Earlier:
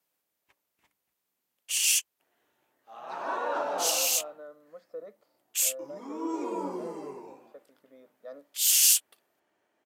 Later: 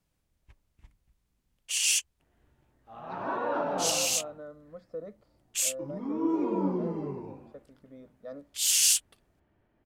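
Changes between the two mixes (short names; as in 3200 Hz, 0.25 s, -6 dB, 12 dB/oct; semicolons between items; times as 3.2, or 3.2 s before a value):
first sound: add bell 14000 Hz -12 dB 0.44 oct; second sound: add air absorption 220 m; master: remove HPF 430 Hz 12 dB/oct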